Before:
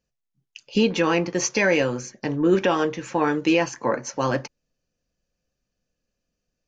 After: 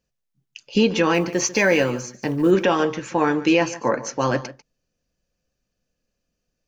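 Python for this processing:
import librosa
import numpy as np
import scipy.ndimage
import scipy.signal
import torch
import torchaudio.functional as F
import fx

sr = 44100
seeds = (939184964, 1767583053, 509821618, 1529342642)

p1 = fx.block_float(x, sr, bits=7, at=(1.14, 2.51))
p2 = p1 + fx.echo_single(p1, sr, ms=145, db=-16.5, dry=0)
y = p2 * 10.0 ** (2.0 / 20.0)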